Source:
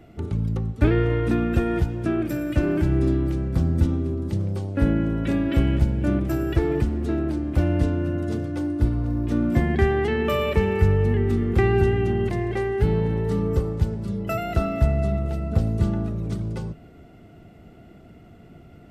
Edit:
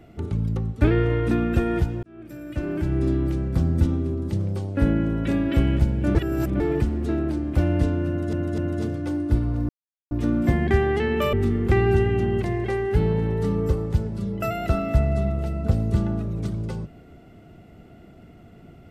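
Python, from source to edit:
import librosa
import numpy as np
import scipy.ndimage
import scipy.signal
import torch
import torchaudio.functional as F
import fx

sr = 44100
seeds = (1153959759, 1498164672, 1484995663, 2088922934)

y = fx.edit(x, sr, fx.fade_in_span(start_s=2.03, length_s=1.23),
    fx.reverse_span(start_s=6.15, length_s=0.45),
    fx.repeat(start_s=8.08, length_s=0.25, count=3),
    fx.insert_silence(at_s=9.19, length_s=0.42),
    fx.cut(start_s=10.41, length_s=0.79), tone=tone)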